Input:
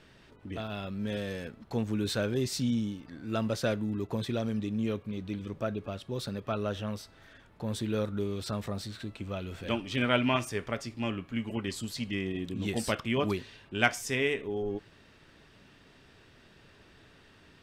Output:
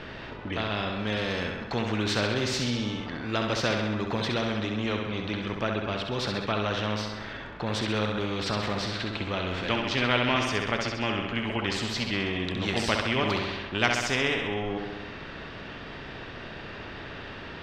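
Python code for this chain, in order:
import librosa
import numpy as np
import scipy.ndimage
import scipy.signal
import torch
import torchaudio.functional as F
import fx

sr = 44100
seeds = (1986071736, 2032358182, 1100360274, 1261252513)

p1 = fx.air_absorb(x, sr, metres=220.0)
p2 = p1 + fx.echo_feedback(p1, sr, ms=66, feedback_pct=54, wet_db=-7.0, dry=0)
p3 = fx.spectral_comp(p2, sr, ratio=2.0)
y = F.gain(torch.from_numpy(p3), 3.0).numpy()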